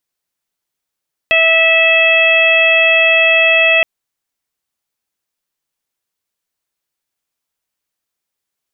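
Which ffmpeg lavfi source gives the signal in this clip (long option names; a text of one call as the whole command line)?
ffmpeg -f lavfi -i "aevalsrc='0.188*sin(2*PI*653*t)+0.0501*sin(2*PI*1306*t)+0.168*sin(2*PI*1959*t)+0.335*sin(2*PI*2612*t)+0.106*sin(2*PI*3265*t)':duration=2.52:sample_rate=44100" out.wav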